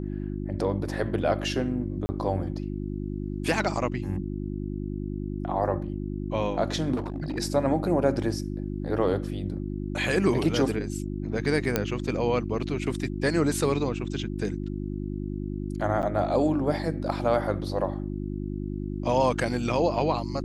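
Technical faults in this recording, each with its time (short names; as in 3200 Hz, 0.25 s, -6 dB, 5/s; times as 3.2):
hum 50 Hz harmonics 7 -32 dBFS
2.06–2.09 gap 30 ms
6.95–7.39 clipped -26.5 dBFS
8.23 gap 3.5 ms
11.76 pop -8 dBFS
16.02–16.03 gap 9 ms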